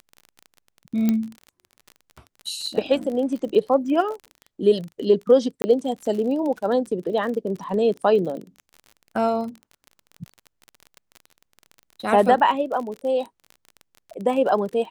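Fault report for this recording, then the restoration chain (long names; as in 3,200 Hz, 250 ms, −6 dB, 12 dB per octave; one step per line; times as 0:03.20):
surface crackle 30 per second −30 dBFS
0:01.09: click −9 dBFS
0:05.62–0:05.64: drop-out 20 ms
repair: click removal
repair the gap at 0:05.62, 20 ms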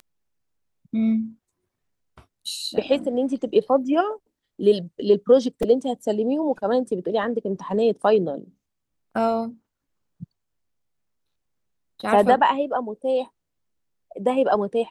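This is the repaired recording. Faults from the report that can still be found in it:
none of them is left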